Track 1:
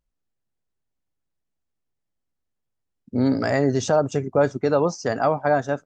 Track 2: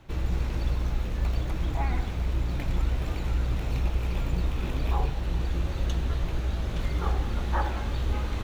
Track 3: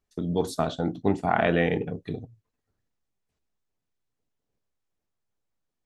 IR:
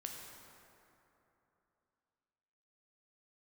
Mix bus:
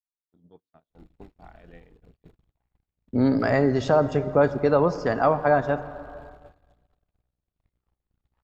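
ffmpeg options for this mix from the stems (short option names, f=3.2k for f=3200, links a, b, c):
-filter_complex "[0:a]lowpass=4k,equalizer=f=1.1k:w=4.5:g=3,volume=-2.5dB,asplit=2[a][b];[b]volume=-5.5dB[c];[1:a]aeval=exprs='(tanh(35.5*val(0)+0.6)-tanh(0.6))/35.5':c=same,adelay=800,volume=-16.5dB,asplit=2[d][e];[e]volume=-10dB[f];[2:a]lowpass=3.8k,acompressor=threshold=-30dB:ratio=8,adelay=150,volume=-13.5dB,asplit=2[g][h];[h]volume=-16dB[i];[3:a]atrim=start_sample=2205[j];[c][f][i]amix=inputs=3:normalize=0[k];[k][j]afir=irnorm=-1:irlink=0[l];[a][d][g][l]amix=inputs=4:normalize=0,agate=range=-39dB:threshold=-43dB:ratio=16:detection=peak,bandreject=f=6k:w=7.3"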